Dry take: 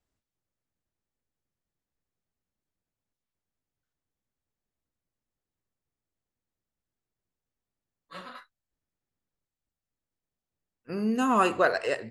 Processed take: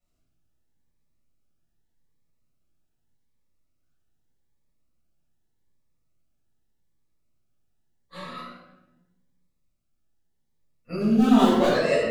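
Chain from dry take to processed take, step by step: 11.00–11.70 s: median filter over 25 samples; simulated room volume 500 m³, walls mixed, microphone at 6.6 m; Shepard-style phaser rising 0.83 Hz; trim -6 dB

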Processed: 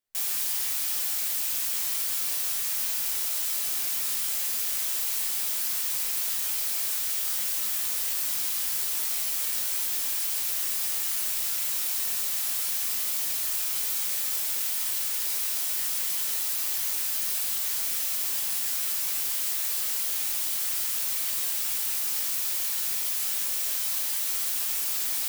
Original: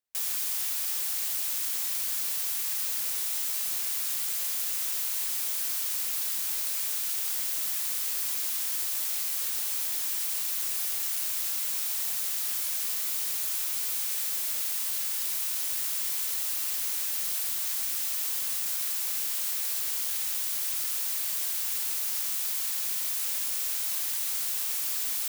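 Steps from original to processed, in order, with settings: bass shelf 62 Hz +9.5 dB; reverberation RT60 0.30 s, pre-delay 4 ms, DRR 0.5 dB

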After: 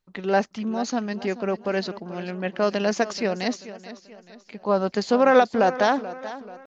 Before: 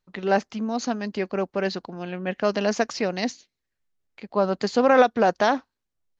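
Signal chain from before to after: tempo 0.93×; modulated delay 434 ms, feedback 43%, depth 70 cents, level -15 dB

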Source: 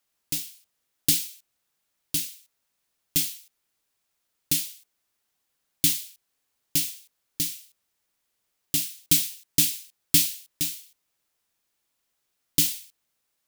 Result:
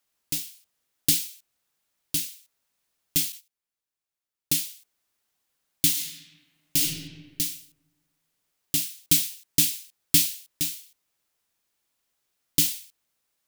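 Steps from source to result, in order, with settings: 3.32–4.67 s: gate -44 dBFS, range -13 dB; 5.90–6.81 s: reverb throw, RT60 1.5 s, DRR -2.5 dB

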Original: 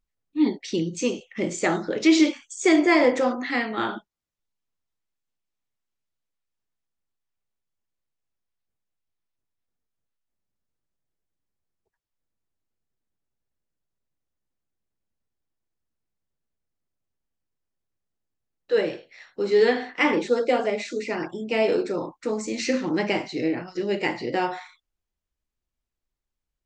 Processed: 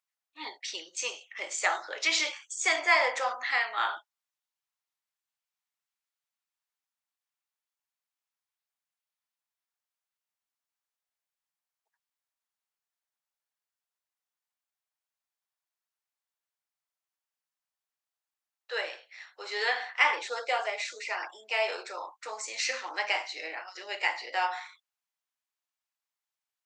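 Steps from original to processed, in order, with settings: high-pass 760 Hz 24 dB/octave

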